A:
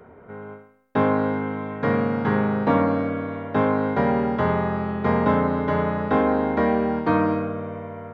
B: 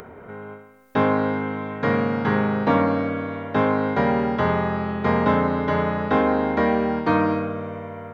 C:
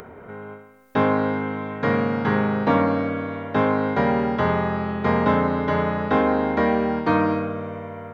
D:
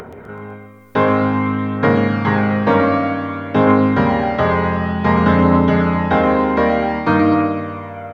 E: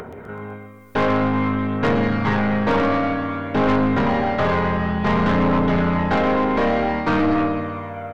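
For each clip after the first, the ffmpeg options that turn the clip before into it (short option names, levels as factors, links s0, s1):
-af "highshelf=f=2300:g=7.5,acompressor=mode=upward:threshold=0.0178:ratio=2.5"
-af anull
-af "aecho=1:1:126|252|378|504|630|756:0.422|0.223|0.118|0.0628|0.0333|0.0176,aphaser=in_gain=1:out_gain=1:delay=2.1:decay=0.32:speed=0.54:type=triangular,volume=1.68"
-af "aeval=exprs='(tanh(5.01*val(0)+0.35)-tanh(0.35))/5.01':c=same"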